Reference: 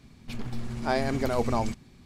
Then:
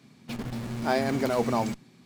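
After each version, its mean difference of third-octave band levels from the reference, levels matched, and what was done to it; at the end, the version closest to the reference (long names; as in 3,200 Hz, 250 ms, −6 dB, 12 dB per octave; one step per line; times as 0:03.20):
2.0 dB: high-pass filter 130 Hz 24 dB per octave
in parallel at −8 dB: comparator with hysteresis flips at −37 dBFS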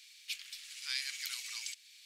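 22.5 dB: in parallel at +3 dB: downward compressor, threshold −37 dBFS, peak gain reduction 15.5 dB
on the sum: inverse Chebyshev high-pass filter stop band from 740 Hz, stop band 60 dB
level +2 dB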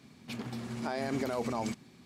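4.0 dB: high-pass filter 160 Hz 12 dB per octave
brickwall limiter −23 dBFS, peak gain reduction 11 dB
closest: first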